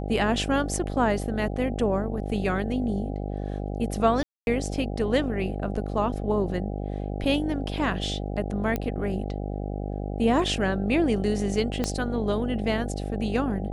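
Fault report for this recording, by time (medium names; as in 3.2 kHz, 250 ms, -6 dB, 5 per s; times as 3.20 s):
buzz 50 Hz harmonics 16 -31 dBFS
4.23–4.47 s: dropout 241 ms
8.76 s: pop -14 dBFS
11.84 s: pop -12 dBFS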